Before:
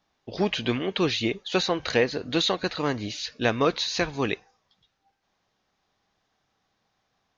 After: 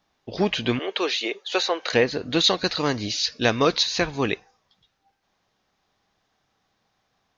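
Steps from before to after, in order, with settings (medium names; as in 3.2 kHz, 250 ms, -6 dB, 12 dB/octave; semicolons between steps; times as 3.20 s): 0.79–1.93 s: high-pass 390 Hz 24 dB/octave; 2.44–3.83 s: peaking EQ 5.1 kHz +9 dB 0.85 oct; trim +2.5 dB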